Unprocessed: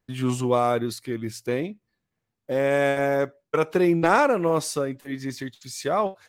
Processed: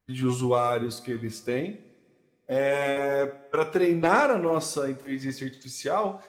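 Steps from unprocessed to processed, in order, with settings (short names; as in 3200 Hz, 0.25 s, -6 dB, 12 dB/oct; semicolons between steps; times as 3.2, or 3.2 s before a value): bin magnitudes rounded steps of 15 dB; two-slope reverb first 0.46 s, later 2.5 s, from -22 dB, DRR 8 dB; gain -2 dB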